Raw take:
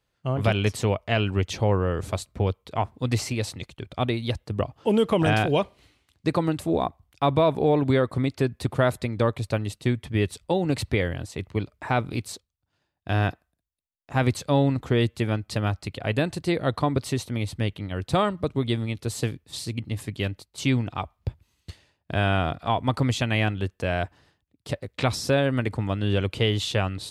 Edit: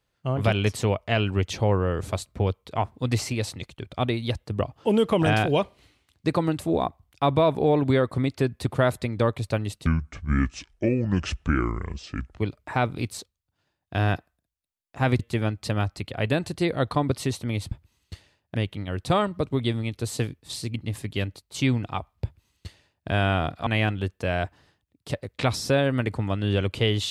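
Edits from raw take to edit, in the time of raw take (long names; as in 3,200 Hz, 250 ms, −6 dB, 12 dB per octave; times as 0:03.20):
0:09.86–0:11.52: play speed 66%
0:14.34–0:15.06: remove
0:21.28–0:22.11: duplicate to 0:17.58
0:22.70–0:23.26: remove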